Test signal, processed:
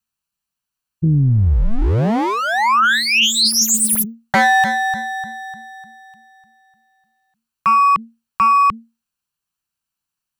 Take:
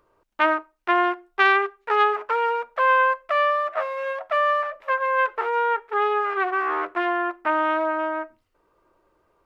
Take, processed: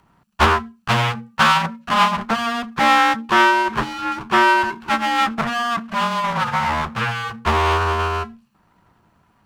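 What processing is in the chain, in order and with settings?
comb filter that takes the minimum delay 0.65 ms; frequency shift -230 Hz; loudspeaker Doppler distortion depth 0.52 ms; trim +8.5 dB

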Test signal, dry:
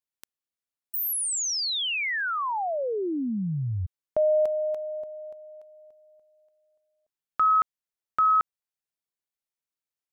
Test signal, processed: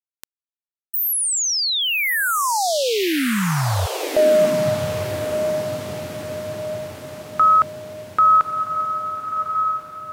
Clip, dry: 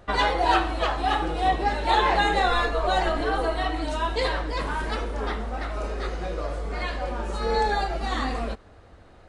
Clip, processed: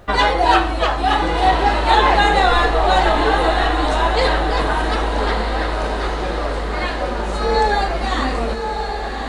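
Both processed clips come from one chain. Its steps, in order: echo that smears into a reverb 1188 ms, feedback 53%, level -6 dB; word length cut 12-bit, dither none; trim +7 dB

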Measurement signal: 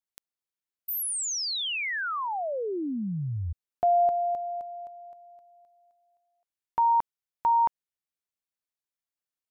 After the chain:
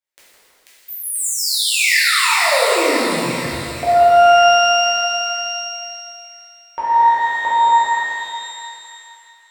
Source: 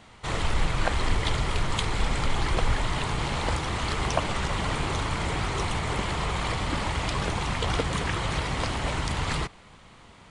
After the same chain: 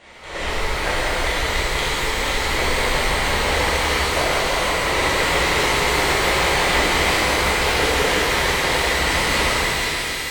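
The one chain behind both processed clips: square tremolo 2.9 Hz, depth 65%, duty 70%; in parallel at +0.5 dB: compression, threshold -36 dBFS; on the sum: graphic EQ 125/500/2000/4000/8000 Hz -7/+11/+10/+4/+4 dB; on a send: two-band feedback delay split 1.6 kHz, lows 162 ms, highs 489 ms, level -3 dB; on the sum: level rider gain up to 5 dB; pitch-shifted reverb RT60 2.2 s, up +12 st, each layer -8 dB, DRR -9.5 dB; trim -12 dB

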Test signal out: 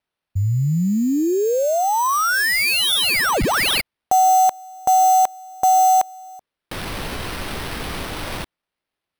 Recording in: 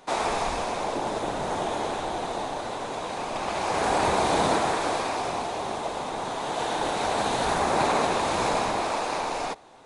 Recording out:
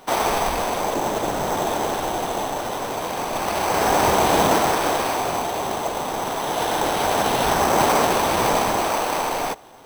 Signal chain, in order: sample-rate reducer 7 kHz, jitter 0%; trim +5.5 dB

